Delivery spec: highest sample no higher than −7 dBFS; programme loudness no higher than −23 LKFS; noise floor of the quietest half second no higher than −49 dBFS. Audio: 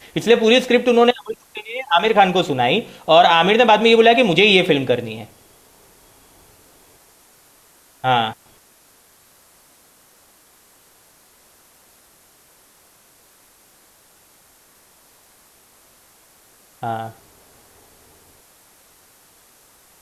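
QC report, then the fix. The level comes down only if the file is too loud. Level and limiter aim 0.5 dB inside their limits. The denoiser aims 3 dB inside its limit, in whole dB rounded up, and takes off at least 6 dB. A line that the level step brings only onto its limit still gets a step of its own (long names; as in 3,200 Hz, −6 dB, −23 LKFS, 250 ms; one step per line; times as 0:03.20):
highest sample −2.0 dBFS: out of spec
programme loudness −15.5 LKFS: out of spec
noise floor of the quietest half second −53 dBFS: in spec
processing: level −8 dB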